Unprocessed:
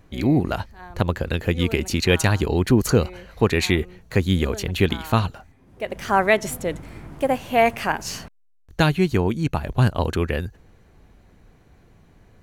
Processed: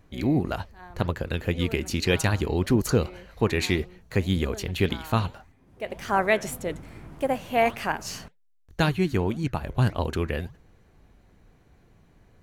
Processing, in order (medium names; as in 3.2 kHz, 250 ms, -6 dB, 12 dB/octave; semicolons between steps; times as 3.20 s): flange 1.8 Hz, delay 2.4 ms, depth 8.5 ms, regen -89%